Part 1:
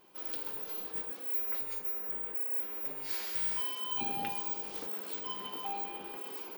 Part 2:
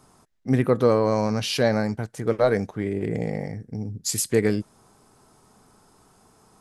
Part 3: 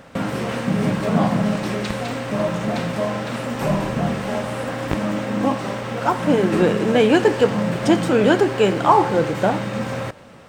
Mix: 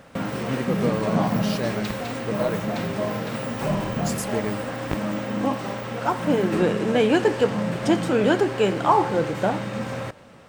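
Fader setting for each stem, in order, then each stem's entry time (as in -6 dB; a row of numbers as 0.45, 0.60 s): -8.5, -7.5, -4.0 dB; 0.00, 0.00, 0.00 s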